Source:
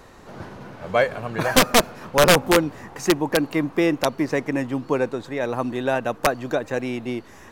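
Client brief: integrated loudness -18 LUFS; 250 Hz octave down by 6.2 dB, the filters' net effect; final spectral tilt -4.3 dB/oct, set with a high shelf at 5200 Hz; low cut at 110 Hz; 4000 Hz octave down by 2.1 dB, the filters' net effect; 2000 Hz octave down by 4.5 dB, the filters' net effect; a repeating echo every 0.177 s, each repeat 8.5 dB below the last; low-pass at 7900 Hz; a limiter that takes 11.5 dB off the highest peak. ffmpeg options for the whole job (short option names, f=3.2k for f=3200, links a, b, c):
-af "highpass=110,lowpass=7.9k,equalizer=f=250:t=o:g=-8.5,equalizer=f=2k:t=o:g=-6,equalizer=f=4k:t=o:g=-3.5,highshelf=f=5.2k:g=7,alimiter=limit=-14dB:level=0:latency=1,aecho=1:1:177|354|531|708:0.376|0.143|0.0543|0.0206,volume=10dB"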